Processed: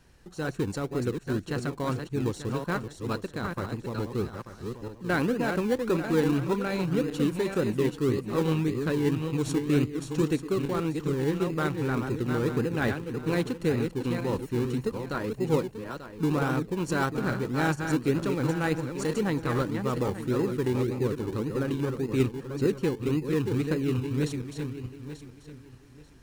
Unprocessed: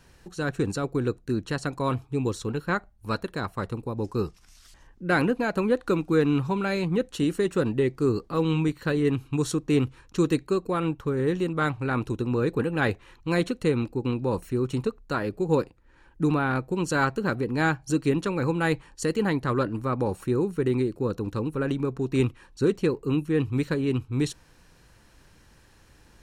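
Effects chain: backward echo that repeats 444 ms, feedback 48%, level -6 dB; in parallel at -9.5 dB: decimation with a swept rate 27×, swing 60% 1.8 Hz; on the sum: trim -5 dB

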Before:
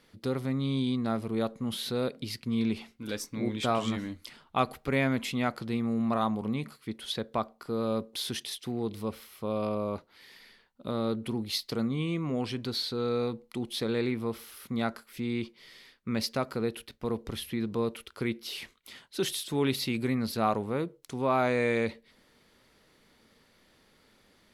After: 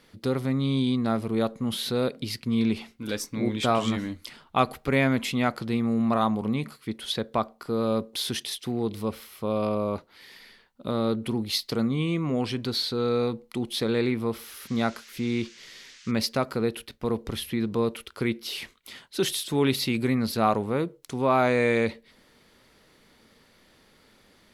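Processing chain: 14.44–16.10 s: band noise 1.5–6.6 kHz -56 dBFS; trim +4.5 dB

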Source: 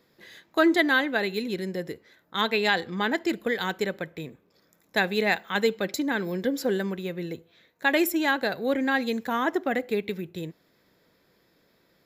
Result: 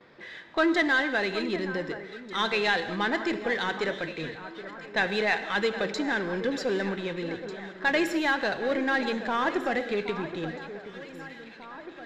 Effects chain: gate with hold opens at -56 dBFS; level-controlled noise filter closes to 2.7 kHz, open at -22 dBFS; bass shelf 410 Hz -8.5 dB; power-law waveshaper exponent 0.7; distance through air 100 m; echo whose repeats swap between lows and highs 772 ms, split 1.8 kHz, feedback 73%, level -12 dB; gated-style reverb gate 250 ms flat, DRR 11 dB; trim -3 dB

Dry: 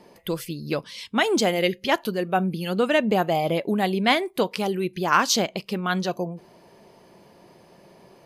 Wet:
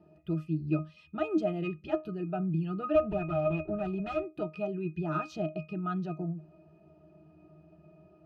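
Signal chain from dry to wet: 2.95–4.24 s: comb filter that takes the minimum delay 5.2 ms; saturation -12.5 dBFS, distortion -18 dB; pitch-class resonator D#, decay 0.19 s; trim +6.5 dB

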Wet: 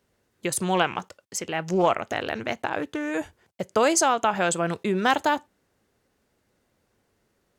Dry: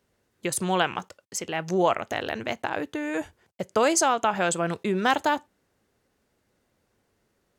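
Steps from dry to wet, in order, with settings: 0.74–3.12 s: loudspeaker Doppler distortion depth 0.18 ms; trim +1 dB

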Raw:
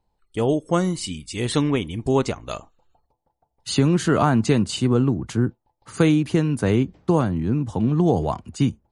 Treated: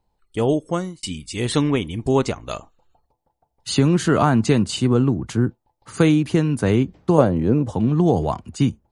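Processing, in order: 0.57–1.03 s: fade out; 7.18–7.72 s: peaking EQ 520 Hz +14 dB 0.89 oct; trim +1.5 dB

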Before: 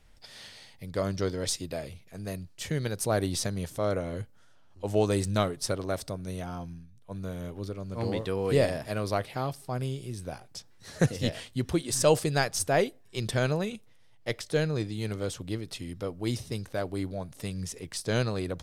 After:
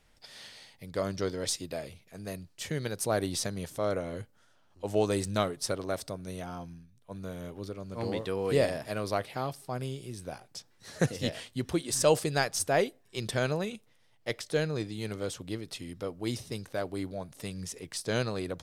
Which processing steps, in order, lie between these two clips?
bass shelf 110 Hz -9 dB; trim -1 dB

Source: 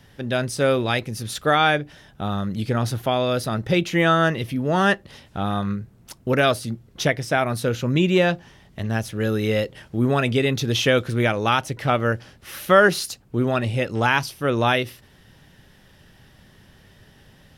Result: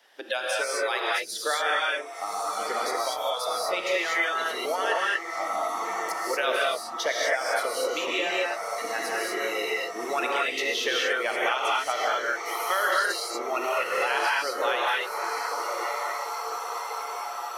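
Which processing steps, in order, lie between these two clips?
high-pass 460 Hz 24 dB/octave; treble shelf 9.8 kHz -5 dB; on a send: echo that smears into a reverb 1093 ms, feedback 65%, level -8 dB; on the sum: harmonic-percussive split harmonic -13 dB; spectral noise reduction 18 dB; in parallel at -0.5 dB: compression, threshold -32 dBFS, peak gain reduction 14.5 dB; on the sum: gated-style reverb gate 260 ms rising, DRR -5 dB; three bands compressed up and down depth 70%; trim -7.5 dB

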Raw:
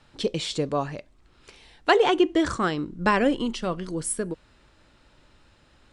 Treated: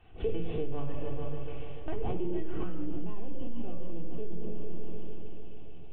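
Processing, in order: CVSD coder 16 kbps; chorus voices 2, 0.87 Hz, delay 20 ms, depth 3.7 ms; high-pass 120 Hz 12 dB/octave; LPC vocoder at 8 kHz pitch kept; bass shelf 180 Hz +8 dB; multi-head delay 146 ms, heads all three, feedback 60%, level -18.5 dB; simulated room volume 3000 m³, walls furnished, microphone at 3.5 m; compression 2:1, threshold -20 dBFS, peak gain reduction 10.5 dB; high-order bell 1.5 kHz -8.5 dB 1.3 oct, from 2.85 s -15 dB; peak limiter -21.5 dBFS, peak gain reduction 13 dB; trim +1 dB

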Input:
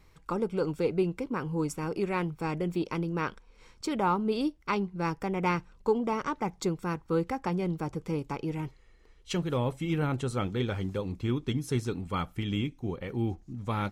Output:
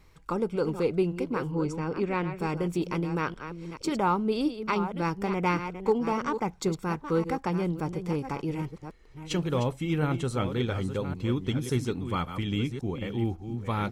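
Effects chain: chunks repeated in reverse 557 ms, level -9.5 dB; 1.51–2.38 s: distance through air 93 m; trim +1.5 dB

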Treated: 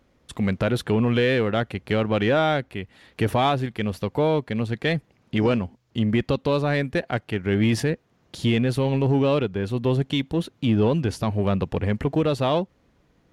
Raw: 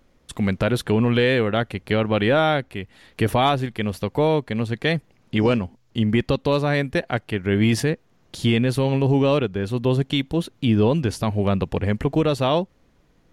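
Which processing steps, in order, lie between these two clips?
high-pass 41 Hz; in parallel at -8.5 dB: overload inside the chain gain 20.5 dB; on the sum: treble shelf 5.9 kHz -5 dB; trim -3.5 dB

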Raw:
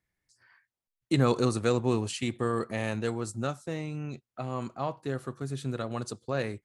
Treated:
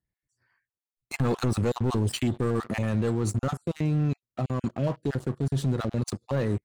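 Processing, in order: random holes in the spectrogram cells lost 23%; bass shelf 470 Hz +11.5 dB; waveshaping leveller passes 3; peak limiter -14 dBFS, peak gain reduction 10.5 dB; trim -5 dB

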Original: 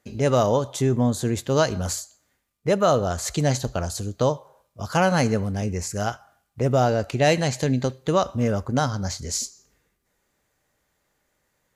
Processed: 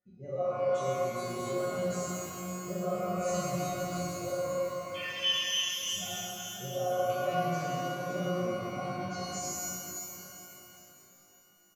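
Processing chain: spectral contrast enhancement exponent 1.9; feedback delay 201 ms, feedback 60%, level -14 dB; 4.94–5.83 s: frequency inversion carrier 3.3 kHz; band-stop 910 Hz, Q 16; feedback comb 180 Hz, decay 0.42 s, harmonics all, mix 100%; pitch-shifted reverb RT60 3.7 s, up +12 st, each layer -8 dB, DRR -8 dB; trim -3.5 dB

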